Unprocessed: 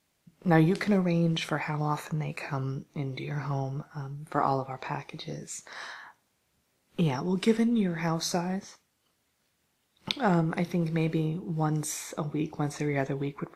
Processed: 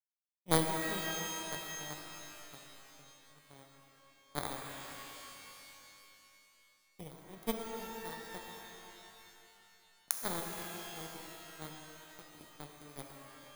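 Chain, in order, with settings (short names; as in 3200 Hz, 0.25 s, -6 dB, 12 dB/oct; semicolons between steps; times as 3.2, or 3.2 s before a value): FFT order left unsorted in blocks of 16 samples; power-law curve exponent 3; shimmer reverb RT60 2.8 s, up +12 st, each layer -2 dB, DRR 3 dB; gain +3 dB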